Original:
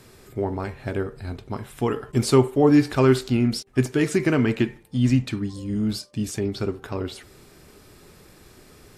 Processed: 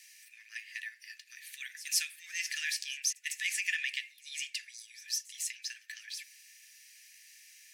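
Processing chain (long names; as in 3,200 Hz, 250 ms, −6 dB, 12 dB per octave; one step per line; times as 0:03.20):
speed change +16%
Chebyshev high-pass with heavy ripple 1,700 Hz, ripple 6 dB
echo ahead of the sound 153 ms −19 dB
level +2 dB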